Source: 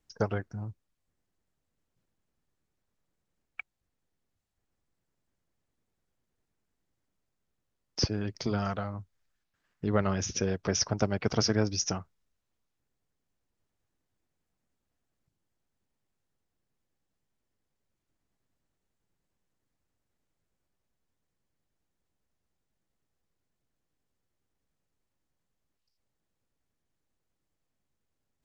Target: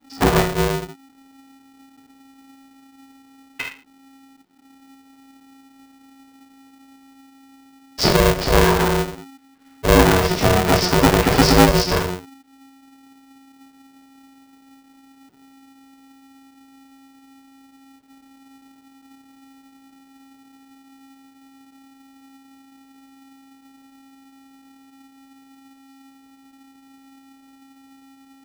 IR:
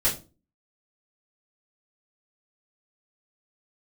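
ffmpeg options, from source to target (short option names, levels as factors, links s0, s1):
-filter_complex "[0:a]aresample=11025,asoftclip=type=tanh:threshold=0.0891,aresample=44100[s0];[1:a]atrim=start_sample=2205,atrim=end_sample=6174,asetrate=26019,aresample=44100[s1];[s0][s1]afir=irnorm=-1:irlink=0,aeval=exprs='val(0)*sgn(sin(2*PI*270*n/s))':c=same"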